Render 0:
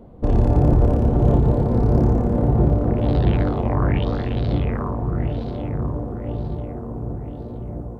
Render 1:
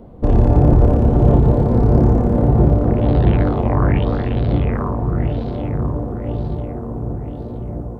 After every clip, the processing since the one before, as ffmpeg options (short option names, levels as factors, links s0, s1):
-filter_complex "[0:a]acrossover=split=3100[s0][s1];[s1]acompressor=threshold=0.00251:ratio=4:attack=1:release=60[s2];[s0][s2]amix=inputs=2:normalize=0,volume=1.58"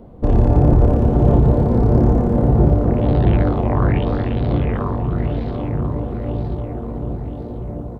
-af "aecho=1:1:737|1474|2211|2948:0.211|0.0972|0.0447|0.0206,volume=0.891"